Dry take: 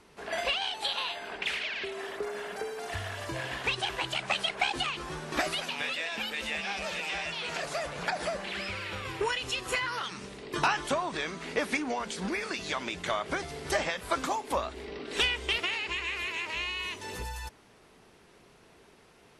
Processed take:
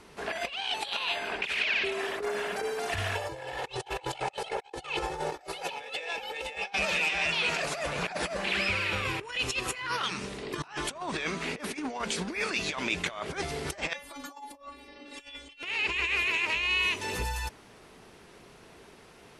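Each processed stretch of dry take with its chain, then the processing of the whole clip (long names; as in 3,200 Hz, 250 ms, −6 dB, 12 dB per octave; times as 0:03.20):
0:03.15–0:06.73: flat-topped bell 640 Hz +10 dB 1.2 octaves + comb filter 2.3 ms, depth 67%
0:13.93–0:15.63: notch filter 1,500 Hz + stiff-string resonator 280 Hz, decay 0.32 s, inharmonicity 0.002 + compressor whose output falls as the input rises −49 dBFS, ratio −0.5
whole clip: compressor whose output falls as the input rises −35 dBFS, ratio −0.5; dynamic equaliser 2,500 Hz, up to +6 dB, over −49 dBFS, Q 5; level +1.5 dB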